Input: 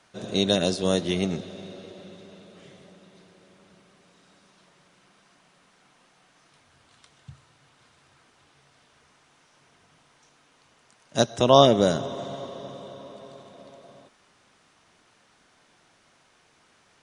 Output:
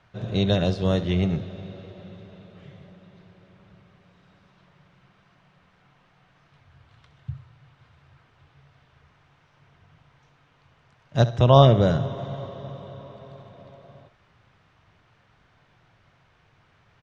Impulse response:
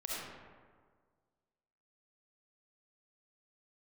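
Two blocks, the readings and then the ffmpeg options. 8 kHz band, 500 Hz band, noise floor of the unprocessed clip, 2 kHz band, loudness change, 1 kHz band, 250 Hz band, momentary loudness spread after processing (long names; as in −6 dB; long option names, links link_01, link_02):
below −10 dB, −1.0 dB, −62 dBFS, −1.0 dB, +1.0 dB, −0.5 dB, +1.0 dB, 24 LU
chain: -af "lowpass=3000,lowshelf=frequency=170:width_type=q:width=1.5:gain=11,aecho=1:1:67|134|201:0.178|0.048|0.013"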